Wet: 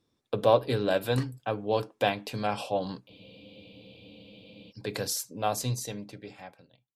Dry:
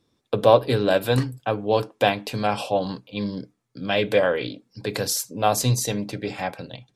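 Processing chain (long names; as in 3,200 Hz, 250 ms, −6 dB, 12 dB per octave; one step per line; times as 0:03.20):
fade-out on the ending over 1.83 s
frozen spectrum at 0:03.11, 1.60 s
level −6.5 dB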